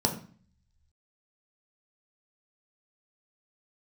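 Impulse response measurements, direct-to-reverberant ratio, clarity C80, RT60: 2.0 dB, 14.0 dB, 0.45 s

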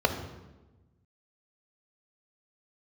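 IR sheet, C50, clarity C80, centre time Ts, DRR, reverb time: 8.0 dB, 10.0 dB, 21 ms, 5.0 dB, 1.1 s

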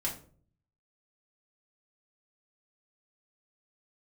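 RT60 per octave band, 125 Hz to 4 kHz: 0.90, 0.70, 0.55, 0.40, 0.35, 0.30 seconds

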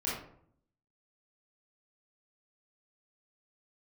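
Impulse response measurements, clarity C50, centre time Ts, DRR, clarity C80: 1.0 dB, 53 ms, −8.0 dB, 6.0 dB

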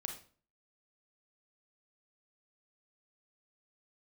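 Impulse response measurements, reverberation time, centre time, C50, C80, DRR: 0.45 s, 19 ms, 7.0 dB, 13.0 dB, 3.5 dB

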